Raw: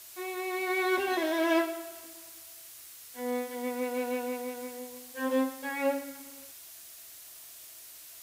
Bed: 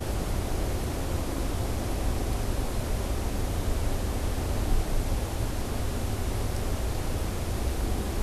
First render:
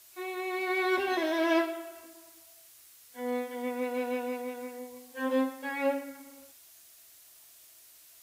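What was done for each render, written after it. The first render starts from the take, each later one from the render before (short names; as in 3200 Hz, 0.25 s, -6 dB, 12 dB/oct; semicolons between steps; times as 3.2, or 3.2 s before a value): noise print and reduce 7 dB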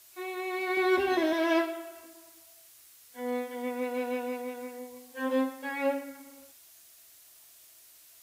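0.77–1.33 low shelf 250 Hz +12 dB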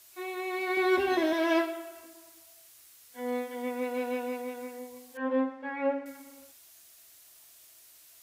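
5.17–6.06 LPF 1900 Hz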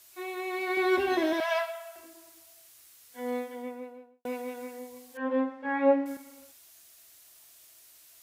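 1.4–1.96 steep high-pass 600 Hz 96 dB/oct; 3.25–4.25 studio fade out; 5.63–6.17 flutter echo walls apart 3.1 m, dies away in 0.33 s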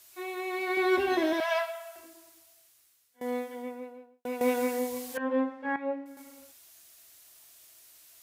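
1.96–3.21 fade out, to -20.5 dB; 4.41–5.18 gain +11.5 dB; 5.76–6.17 gain -10.5 dB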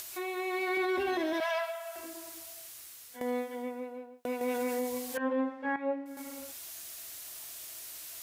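upward compressor, threshold -33 dBFS; limiter -23.5 dBFS, peak gain reduction 7.5 dB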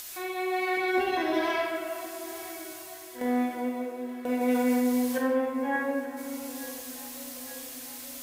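echo with dull and thin repeats by turns 0.44 s, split 900 Hz, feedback 79%, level -14 dB; shoebox room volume 990 m³, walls mixed, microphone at 2 m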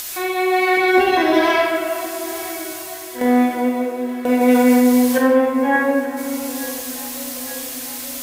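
gain +12 dB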